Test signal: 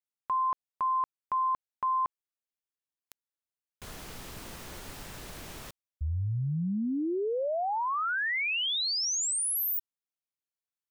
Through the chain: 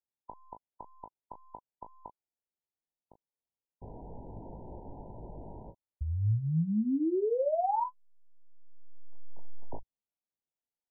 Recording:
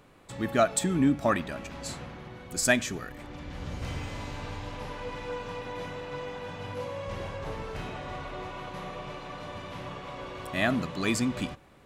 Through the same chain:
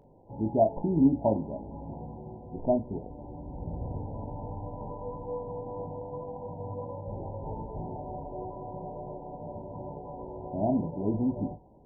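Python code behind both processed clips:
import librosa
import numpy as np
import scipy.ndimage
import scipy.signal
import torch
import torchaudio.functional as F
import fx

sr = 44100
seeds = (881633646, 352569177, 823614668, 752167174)

p1 = fx.tracing_dist(x, sr, depth_ms=0.023)
p2 = fx.brickwall_lowpass(p1, sr, high_hz=1000.0)
y = p2 + fx.room_early_taps(p2, sr, ms=(19, 37), db=(-6.5, -10.5), dry=0)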